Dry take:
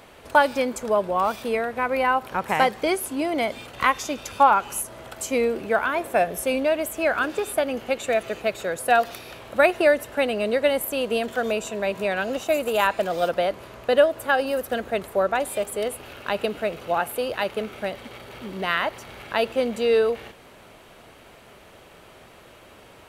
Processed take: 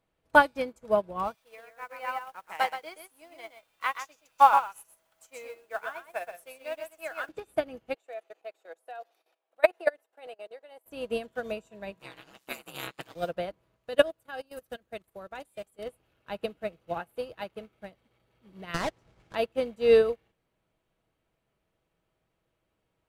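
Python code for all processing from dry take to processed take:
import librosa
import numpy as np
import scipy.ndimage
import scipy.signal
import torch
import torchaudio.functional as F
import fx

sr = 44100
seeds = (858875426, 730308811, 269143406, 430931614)

y = fx.chain(x, sr, fx.highpass(hz=740.0, slope=12),
    fx.quant_dither(seeds[0], bits=8, dither='triangular'),
    fx.echo_single(ms=126, db=-4.0), at=(1.34, 7.29))
y = fx.chain(y, sr, fx.highpass(hz=390.0, slope=24),
    fx.level_steps(step_db=14),
    fx.peak_eq(hz=750.0, db=7.5, octaves=0.33), at=(7.94, 10.86))
y = fx.spec_clip(y, sr, under_db=24, at=(11.99, 13.14), fade=0.02)
y = fx.highpass(y, sr, hz=230.0, slope=12, at=(11.99, 13.14), fade=0.02)
y = fx.ring_mod(y, sr, carrier_hz=66.0, at=(11.99, 13.14), fade=0.02)
y = fx.chain(y, sr, fx.high_shelf(hz=2300.0, db=8.0),
    fx.level_steps(step_db=12), at=(13.76, 15.79))
y = fx.chain(y, sr, fx.halfwave_hold(),
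    fx.air_absorb(metres=55.0), at=(18.74, 19.35))
y = fx.low_shelf(y, sr, hz=230.0, db=10.5)
y = y + 0.3 * np.pad(y, (int(6.2 * sr / 1000.0), 0))[:len(y)]
y = fx.upward_expand(y, sr, threshold_db=-34.0, expansion=2.5)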